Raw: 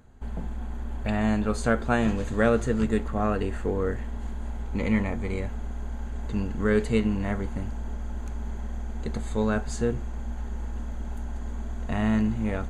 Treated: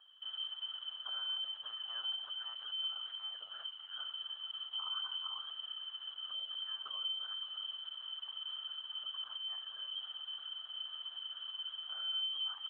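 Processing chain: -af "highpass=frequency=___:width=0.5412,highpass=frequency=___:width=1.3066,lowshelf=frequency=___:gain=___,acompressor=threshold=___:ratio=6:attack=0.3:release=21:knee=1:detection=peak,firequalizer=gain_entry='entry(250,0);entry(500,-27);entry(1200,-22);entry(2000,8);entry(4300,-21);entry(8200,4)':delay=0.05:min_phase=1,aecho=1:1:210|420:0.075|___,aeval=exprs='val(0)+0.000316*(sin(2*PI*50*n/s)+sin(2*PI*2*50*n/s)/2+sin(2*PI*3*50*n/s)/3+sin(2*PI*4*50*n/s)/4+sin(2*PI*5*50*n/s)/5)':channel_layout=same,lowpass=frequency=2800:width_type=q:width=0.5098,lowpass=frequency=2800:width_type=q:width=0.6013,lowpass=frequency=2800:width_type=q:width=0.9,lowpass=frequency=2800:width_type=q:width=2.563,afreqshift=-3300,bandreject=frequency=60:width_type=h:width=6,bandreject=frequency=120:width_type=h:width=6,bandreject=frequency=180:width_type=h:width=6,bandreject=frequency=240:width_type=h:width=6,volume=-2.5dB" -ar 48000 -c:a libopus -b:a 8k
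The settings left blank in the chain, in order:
140, 140, 430, 6.5, -34dB, 0.0127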